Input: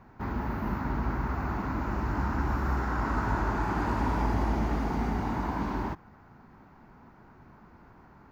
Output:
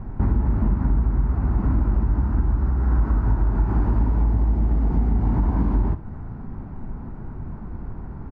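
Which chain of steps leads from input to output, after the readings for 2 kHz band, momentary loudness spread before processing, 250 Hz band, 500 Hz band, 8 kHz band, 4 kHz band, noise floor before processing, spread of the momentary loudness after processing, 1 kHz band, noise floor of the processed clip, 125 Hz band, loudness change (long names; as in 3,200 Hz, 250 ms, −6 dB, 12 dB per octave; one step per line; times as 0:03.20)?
−7.5 dB, 4 LU, +5.0 dB, +1.0 dB, can't be measured, below −10 dB, −55 dBFS, 15 LU, −4.0 dB, −35 dBFS, +11.0 dB, +8.5 dB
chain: spectral tilt −4.5 dB per octave
downward compressor 10 to 1, threshold −24 dBFS, peak gain reduction 17 dB
ambience of single reflections 38 ms −15 dB, 66 ms −15.5 dB
level +7.5 dB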